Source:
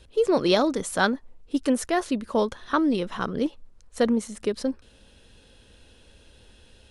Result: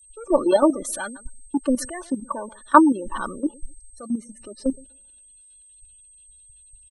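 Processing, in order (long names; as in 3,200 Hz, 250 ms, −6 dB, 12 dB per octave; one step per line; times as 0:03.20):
on a send: repeating echo 129 ms, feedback 30%, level −21.5 dB
on the sum: soft clipping −21.5 dBFS, distortion −11 dB
in parallel at −1.5 dB: downward compressor 20 to 1, threshold −36 dBFS, peak gain reduction 13.5 dB
on the sum: high-shelf EQ 5,600 Hz +2 dB
comb filter 3.4 ms, depth 51%
downward expander −43 dBFS
dead-zone distortion −56 dBFS
gate on every frequency bin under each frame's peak −20 dB strong
output level in coarse steps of 11 dB
octave-band graphic EQ 125/1,000/8,000 Hz −7/+9/−9 dB
steady tone 8,300 Hz −47 dBFS
multiband upward and downward expander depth 100%
level +1.5 dB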